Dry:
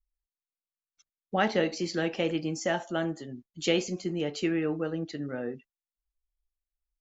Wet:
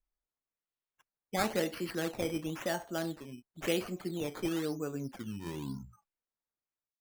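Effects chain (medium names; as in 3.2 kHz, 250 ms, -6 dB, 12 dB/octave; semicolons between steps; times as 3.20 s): tape stop on the ending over 2.32 s; decimation with a swept rate 11×, swing 100% 0.97 Hz; trim -5.5 dB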